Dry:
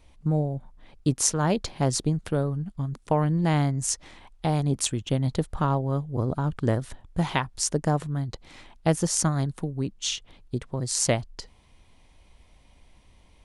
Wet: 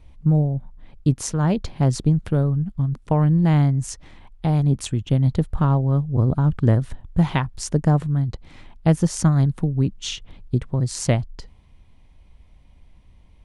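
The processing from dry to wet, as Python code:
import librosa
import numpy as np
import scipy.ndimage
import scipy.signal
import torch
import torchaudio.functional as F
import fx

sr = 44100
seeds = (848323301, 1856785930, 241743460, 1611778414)

y = fx.rider(x, sr, range_db=10, speed_s=2.0)
y = fx.bass_treble(y, sr, bass_db=9, treble_db=-6)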